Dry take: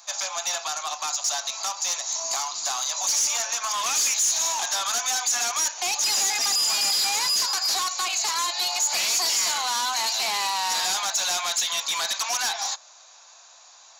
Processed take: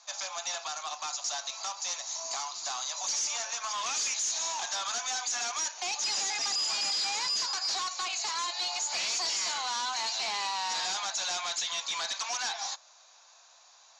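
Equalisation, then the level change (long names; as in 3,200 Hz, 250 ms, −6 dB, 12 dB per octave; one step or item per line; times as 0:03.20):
high-pass filter 58 Hz
low-pass filter 6,800 Hz 24 dB per octave
−6.5 dB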